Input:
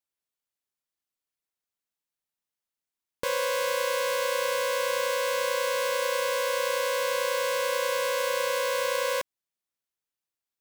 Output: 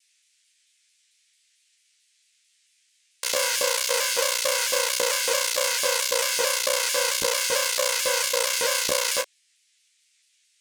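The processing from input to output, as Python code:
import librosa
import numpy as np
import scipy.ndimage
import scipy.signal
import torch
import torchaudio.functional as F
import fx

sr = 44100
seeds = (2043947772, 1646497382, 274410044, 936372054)

p1 = fx.wiener(x, sr, points=41)
p2 = fx.peak_eq(p1, sr, hz=7600.0, db=14.0, octaves=2.5)
p3 = fx.schmitt(p2, sr, flips_db=-28.0)
p4 = p2 + (p3 * 10.0 ** (-5.5 / 20.0))
p5 = fx.filter_lfo_highpass(p4, sr, shape='saw_up', hz=3.6, low_hz=280.0, high_hz=2900.0, q=0.73)
p6 = fx.dmg_noise_band(p5, sr, seeds[0], low_hz=2000.0, high_hz=9300.0, level_db=-70.0)
p7 = fx.room_early_taps(p6, sr, ms=(14, 31), db=(-4.0, -9.5))
p8 = fx.vibrato_shape(p7, sr, shape='saw_down', rate_hz=4.5, depth_cents=100.0)
y = p8 * 10.0 ** (2.0 / 20.0)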